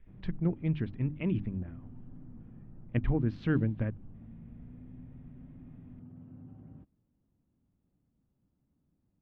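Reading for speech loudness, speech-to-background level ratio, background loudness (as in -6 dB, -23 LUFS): -33.0 LUFS, 18.5 dB, -51.5 LUFS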